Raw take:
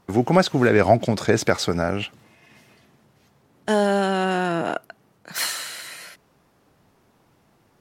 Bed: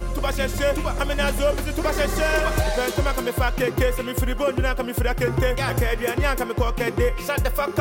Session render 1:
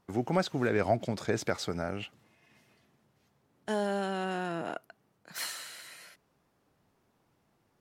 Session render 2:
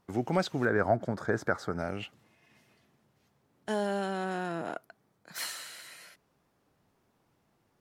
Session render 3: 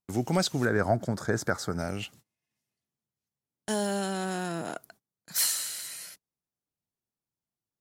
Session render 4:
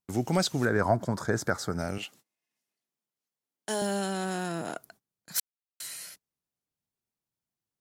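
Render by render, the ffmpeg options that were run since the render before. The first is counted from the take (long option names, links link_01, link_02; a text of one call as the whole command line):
ffmpeg -i in.wav -af "volume=-11.5dB" out.wav
ffmpeg -i in.wav -filter_complex "[0:a]asettb=1/sr,asplit=3[link_01][link_02][link_03];[link_01]atrim=end=0.654[link_04];[link_02]atrim=start=0.65:end=1.79,asetpts=PTS-STARTPTS,afade=type=in:duration=0.004:curve=qsin,afade=type=out:start_time=1.136:duration=0.004:curve=qsin,highshelf=frequency=2000:width_type=q:width=3:gain=-8.5[link_05];[link_03]atrim=start=1.786[link_06];[link_04][link_05]acrossfade=duration=0.004:curve1=hsin:curve2=qsin[link_07];[link_07][link_06]acrossfade=duration=0.004:curve1=qsin:curve2=hsin,asettb=1/sr,asplit=3[link_08][link_09][link_10];[link_08]atrim=end=4.034[link_11];[link_09]atrim=start=4.03:end=5.39,asetpts=PTS-STARTPTS,afade=type=in:duration=0.004:curve=qsin,afade=type=out:start_time=1.356:duration=0.004:curve=qsin,bandreject=frequency=2800:width=12[link_12];[link_10]atrim=start=5.386[link_13];[link_11][link_12]acrossfade=duration=0.004:curve1=hsin:curve2=qsin[link_14];[link_14][link_13]acrossfade=duration=0.004:curve1=qsin:curve2=hsin" out.wav
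ffmpeg -i in.wav -af "agate=range=-27dB:threshold=-56dB:ratio=16:detection=peak,bass=frequency=250:gain=5,treble=frequency=4000:gain=15" out.wav
ffmpeg -i in.wav -filter_complex "[0:a]asettb=1/sr,asplit=3[link_01][link_02][link_03];[link_01]atrim=end=0.824[link_04];[link_02]atrim=start=0.82:end=1.24,asetpts=PTS-STARTPTS,afade=type=in:duration=0.004:curve=qsin,afade=type=out:start_time=0.416:duration=0.004:curve=qsin,equalizer=frequency=1000:width=6.8:gain=14[link_05];[link_03]atrim=start=1.236[link_06];[link_04][link_05]acrossfade=duration=0.004:curve1=hsin:curve2=qsin[link_07];[link_07][link_06]acrossfade=duration=0.004:curve1=qsin:curve2=hsin,asettb=1/sr,asplit=3[link_08][link_09][link_10];[link_08]atrim=end=1.984[link_11];[link_09]atrim=start=1.98:end=3.82,asetpts=PTS-STARTPTS,afade=type=in:duration=0.004:curve=qsin,afade=type=out:start_time=1.836:duration=0.004:curve=qsin,highpass=280[link_12];[link_10]atrim=start=3.816[link_13];[link_11][link_12]acrossfade=duration=0.004:curve1=hsin:curve2=qsin[link_14];[link_14][link_13]acrossfade=duration=0.004:curve1=qsin:curve2=hsin,asplit=3[link_15][link_16][link_17];[link_15]atrim=end=5.4,asetpts=PTS-STARTPTS,afade=type=out:start_time=5.396:duration=0.004:curve=hsin[link_18];[link_16]atrim=start=5.4:end=5.8,asetpts=PTS-STARTPTS,volume=0[link_19];[link_17]atrim=start=5.8,asetpts=PTS-STARTPTS,afade=type=in:duration=0.004:curve=hsin[link_20];[link_18][link_19][link_20]concat=n=3:v=0:a=1" out.wav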